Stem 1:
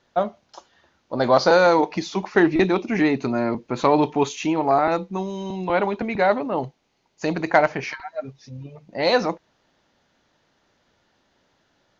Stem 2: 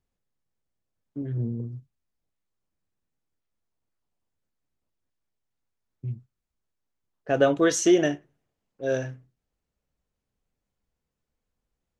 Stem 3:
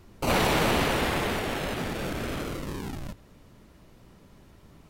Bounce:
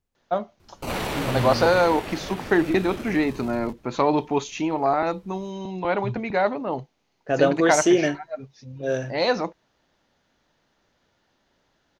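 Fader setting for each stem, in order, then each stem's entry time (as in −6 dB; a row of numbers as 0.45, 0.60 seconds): −3.0, +1.0, −4.5 decibels; 0.15, 0.00, 0.60 seconds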